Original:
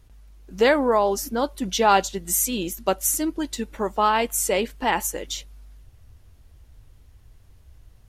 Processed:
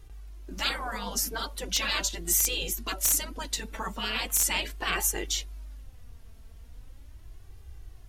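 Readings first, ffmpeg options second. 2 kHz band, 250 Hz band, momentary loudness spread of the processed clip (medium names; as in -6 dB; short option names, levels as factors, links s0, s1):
-3.5 dB, -14.0 dB, 11 LU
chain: -af "afftfilt=real='re*lt(hypot(re,im),0.158)':imag='im*lt(hypot(re,im),0.158)':win_size=1024:overlap=0.75,flanger=delay=2.5:depth=2:regen=24:speed=0.39:shape=sinusoidal,aeval=exprs='(mod(8.91*val(0)+1,2)-1)/8.91':c=same,volume=2"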